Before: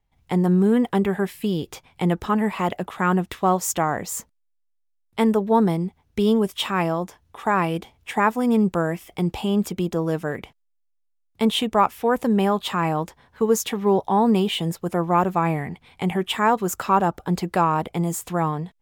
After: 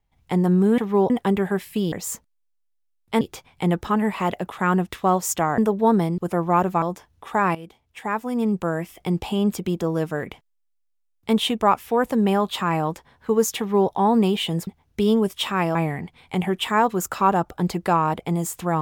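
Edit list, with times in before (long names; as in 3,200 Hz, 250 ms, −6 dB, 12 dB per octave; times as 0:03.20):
0:03.97–0:05.26: move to 0:01.60
0:05.86–0:06.94: swap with 0:14.79–0:15.43
0:07.67–0:09.21: fade in, from −14.5 dB
0:13.70–0:14.02: duplicate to 0:00.78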